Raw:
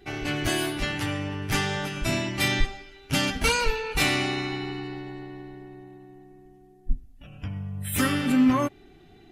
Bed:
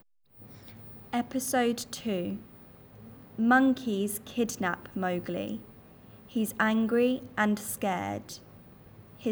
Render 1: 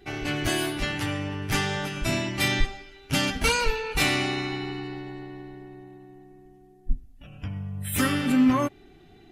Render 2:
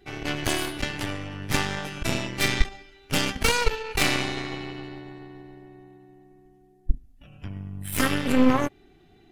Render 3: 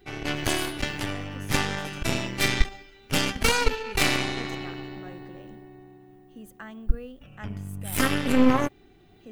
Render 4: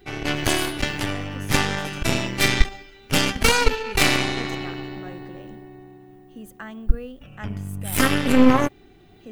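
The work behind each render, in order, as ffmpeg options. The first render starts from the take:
ffmpeg -i in.wav -af anull out.wav
ffmpeg -i in.wav -af "aeval=exprs='0.447*(cos(1*acos(clip(val(0)/0.447,-1,1)))-cos(1*PI/2))+0.0794*(cos(6*acos(clip(val(0)/0.447,-1,1)))-cos(6*PI/2))+0.0224*(cos(7*acos(clip(val(0)/0.447,-1,1)))-cos(7*PI/2))':channel_layout=same" out.wav
ffmpeg -i in.wav -i bed.wav -filter_complex "[1:a]volume=-16dB[link_01];[0:a][link_01]amix=inputs=2:normalize=0" out.wav
ffmpeg -i in.wav -af "volume=4.5dB" out.wav

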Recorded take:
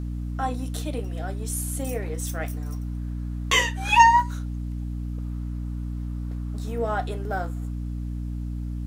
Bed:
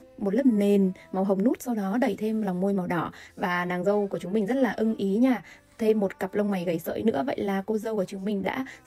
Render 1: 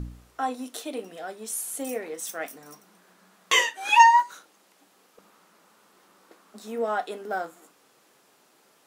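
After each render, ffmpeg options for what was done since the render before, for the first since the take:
ffmpeg -i in.wav -af "bandreject=frequency=60:width_type=h:width=4,bandreject=frequency=120:width_type=h:width=4,bandreject=frequency=180:width_type=h:width=4,bandreject=frequency=240:width_type=h:width=4,bandreject=frequency=300:width_type=h:width=4" out.wav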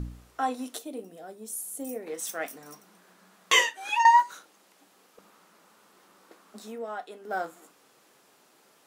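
ffmpeg -i in.wav -filter_complex "[0:a]asettb=1/sr,asplit=3[link_01][link_02][link_03];[link_01]atrim=end=0.784[link_04];[link_02]atrim=start=0.78:end=2.07,asetpts=PTS-STARTPTS,afade=type=in:duration=0.004:curve=qsin,afade=type=out:start_time=1.286:duration=0.004:curve=qsin,equalizer=frequency=2200:width=0.31:gain=-13.5[link_05];[link_03]atrim=start=2.066[link_06];[link_04][link_05]acrossfade=duration=0.004:curve1=hsin:curve2=qsin[link_07];[link_07][link_06]acrossfade=duration=0.004:curve1=qsin:curve2=hsin,asplit=4[link_08][link_09][link_10][link_11];[link_08]atrim=end=4.05,asetpts=PTS-STARTPTS,afade=type=out:start_time=3.58:duration=0.47:silence=0.211349[link_12];[link_09]atrim=start=4.05:end=6.79,asetpts=PTS-STARTPTS,afade=type=in:duration=0.004:curve=hsin:silence=0.211349,afade=type=out:start_time=2.55:duration=0.19:silence=0.354813[link_13];[link_10]atrim=start=6.79:end=7.21,asetpts=PTS-STARTPTS,volume=-9dB[link_14];[link_11]atrim=start=7.21,asetpts=PTS-STARTPTS,afade=type=in:duration=0.19:silence=0.354813[link_15];[link_12][link_13][link_14][link_15]concat=n=4:v=0:a=1" out.wav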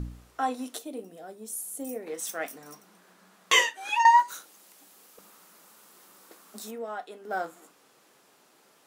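ffmpeg -i in.wav -filter_complex "[0:a]asettb=1/sr,asplit=3[link_01][link_02][link_03];[link_01]atrim=end=4.284[link_04];[link_02]atrim=start=4.28:end=6.71,asetpts=PTS-STARTPTS,afade=type=in:duration=0.004:curve=qsin,afade=type=out:start_time=2.426:duration=0.004:curve=qsin,aemphasis=mode=production:type=50kf[link_05];[link_03]atrim=start=6.706[link_06];[link_04][link_05]acrossfade=duration=0.004:curve1=hsin:curve2=qsin[link_07];[link_07][link_06]acrossfade=duration=0.004:curve1=qsin:curve2=hsin" out.wav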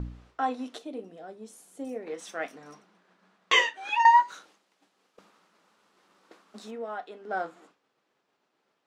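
ffmpeg -i in.wav -af "lowpass=4100,agate=range=-33dB:threshold=-53dB:ratio=3:detection=peak" out.wav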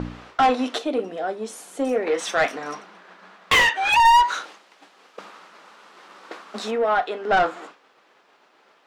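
ffmpeg -i in.wav -filter_complex "[0:a]asplit=2[link_01][link_02];[link_02]highpass=frequency=720:poles=1,volume=27dB,asoftclip=type=tanh:threshold=-8dB[link_03];[link_01][link_03]amix=inputs=2:normalize=0,lowpass=frequency=2900:poles=1,volume=-6dB" out.wav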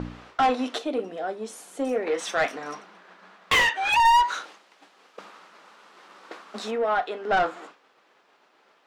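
ffmpeg -i in.wav -af "volume=-3.5dB" out.wav

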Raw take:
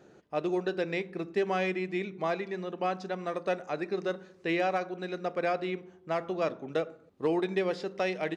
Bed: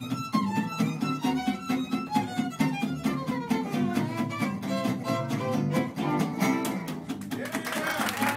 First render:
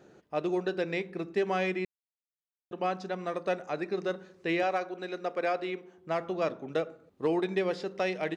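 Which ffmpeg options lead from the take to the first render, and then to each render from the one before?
ffmpeg -i in.wav -filter_complex "[0:a]asettb=1/sr,asplit=3[link_01][link_02][link_03];[link_01]atrim=end=4.634[link_04];[link_02]atrim=start=4.63:end=5.98,asetpts=PTS-STARTPTS,afade=type=in:duration=0.004:curve=qsin,afade=type=out:start_time=1.346:duration=0.004:curve=qsin,highpass=260[link_05];[link_03]atrim=start=5.976[link_06];[link_04][link_05]acrossfade=duration=0.004:curve1=hsin:curve2=qsin[link_07];[link_07][link_06]acrossfade=duration=0.004:curve1=qsin:curve2=hsin,asplit=3[link_08][link_09][link_10];[link_08]atrim=end=1.85,asetpts=PTS-STARTPTS,afade=type=out:start_time=1.846:duration=0.004:curve=hsin[link_11];[link_09]atrim=start=1.85:end=2.71,asetpts=PTS-STARTPTS,volume=0[link_12];[link_10]atrim=start=2.71,asetpts=PTS-STARTPTS,afade=type=in:duration=0.004:curve=hsin[link_13];[link_11][link_12][link_13]concat=n=3:v=0:a=1" out.wav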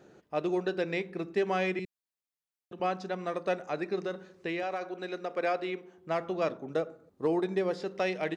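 ffmpeg -i in.wav -filter_complex "[0:a]asettb=1/sr,asplit=3[link_01][link_02][link_03];[link_01]atrim=end=1.794[link_04];[link_02]atrim=start=1.79:end=2.8,asetpts=PTS-STARTPTS,afade=type=in:duration=0.004:curve=qsin,afade=type=out:start_time=1.006:duration=0.004:curve=qsin,acrossover=split=280|3000[link_05][link_06][link_07];[link_06]acompressor=threshold=-45dB:ratio=6:attack=3.2:release=140:knee=2.83:detection=peak[link_08];[link_05][link_08][link_07]amix=inputs=3:normalize=0[link_09];[link_03]atrim=start=2.796[link_10];[link_04][link_09]acrossfade=duration=0.004:curve1=hsin:curve2=qsin[link_11];[link_11][link_10]acrossfade=duration=0.004:curve1=qsin:curve2=hsin,asettb=1/sr,asplit=3[link_12][link_13][link_14];[link_12]atrim=end=3.994[link_15];[link_13]atrim=start=3.99:end=5.37,asetpts=PTS-STARTPTS,afade=type=in:duration=0.004:curve=qsin,afade=type=out:start_time=1.376:duration=0.004:curve=qsin,acompressor=threshold=-29dB:ratio=6:attack=3.2:release=140:knee=1:detection=peak[link_16];[link_14]atrim=start=5.366[link_17];[link_15][link_16]acrossfade=duration=0.004:curve1=hsin:curve2=qsin[link_18];[link_18][link_17]acrossfade=duration=0.004:curve1=qsin:curve2=hsin,asettb=1/sr,asplit=3[link_19][link_20][link_21];[link_19]atrim=end=6.574[link_22];[link_20]atrim=start=6.57:end=7.82,asetpts=PTS-STARTPTS,afade=type=in:duration=0.004:curve=qsin,afade=type=out:start_time=1.246:duration=0.004:curve=qsin,equalizer=frequency=2700:width_type=o:width=1.2:gain=-7[link_23];[link_21]atrim=start=7.816[link_24];[link_22][link_23]acrossfade=duration=0.004:curve1=hsin:curve2=qsin[link_25];[link_25][link_24]acrossfade=duration=0.004:curve1=qsin:curve2=hsin" out.wav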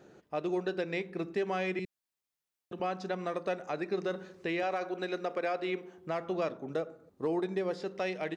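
ffmpeg -i in.wav -af "dynaudnorm=framelen=220:gausssize=17:maxgain=3.5dB,alimiter=limit=-23dB:level=0:latency=1:release=318" out.wav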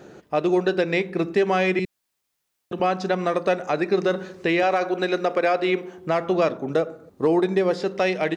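ffmpeg -i in.wav -af "volume=12dB" out.wav

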